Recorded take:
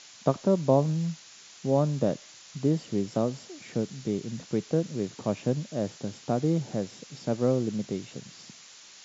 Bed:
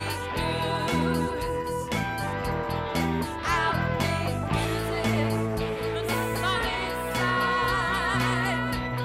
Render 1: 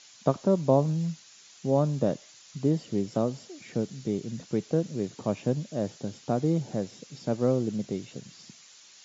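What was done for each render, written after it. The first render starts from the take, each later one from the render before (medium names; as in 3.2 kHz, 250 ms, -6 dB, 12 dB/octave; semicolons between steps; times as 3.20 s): noise reduction 6 dB, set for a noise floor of -51 dBFS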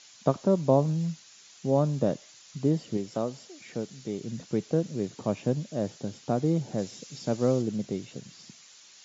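2.97–4.21 s: bass shelf 350 Hz -7.5 dB; 6.78–7.62 s: treble shelf 3.6 kHz +7 dB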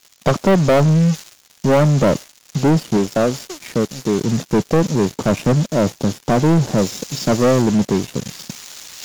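reverse; upward compressor, threshold -41 dBFS; reverse; waveshaping leveller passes 5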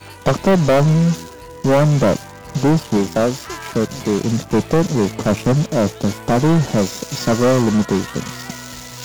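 add bed -7.5 dB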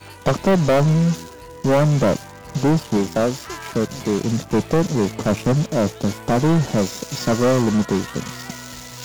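trim -2.5 dB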